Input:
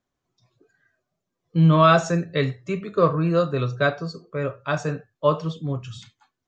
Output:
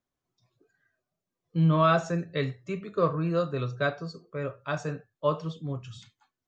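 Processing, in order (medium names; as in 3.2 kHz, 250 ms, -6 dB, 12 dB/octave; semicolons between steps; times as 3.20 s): 1.64–2.19 s: treble shelf 4.2 kHz -6 dB; trim -6.5 dB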